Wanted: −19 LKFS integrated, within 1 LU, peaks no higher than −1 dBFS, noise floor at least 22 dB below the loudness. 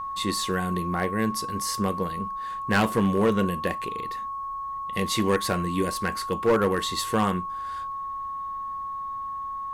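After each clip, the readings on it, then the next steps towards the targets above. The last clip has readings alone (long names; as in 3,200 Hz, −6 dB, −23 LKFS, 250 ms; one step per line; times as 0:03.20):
share of clipped samples 0.8%; peaks flattened at −15.5 dBFS; interfering tone 1,100 Hz; level of the tone −30 dBFS; integrated loudness −27.0 LKFS; sample peak −15.5 dBFS; target loudness −19.0 LKFS
→ clipped peaks rebuilt −15.5 dBFS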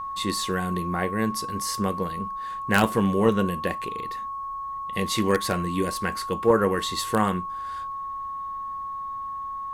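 share of clipped samples 0.0%; interfering tone 1,100 Hz; level of the tone −30 dBFS
→ notch filter 1,100 Hz, Q 30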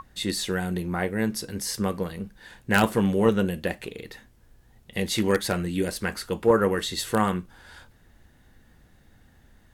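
interfering tone none found; integrated loudness −26.0 LKFS; sample peak −6.0 dBFS; target loudness −19.0 LKFS
→ level +7 dB
brickwall limiter −1 dBFS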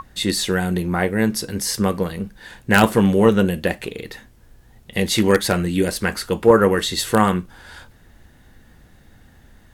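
integrated loudness −19.0 LKFS; sample peak −1.0 dBFS; background noise floor −50 dBFS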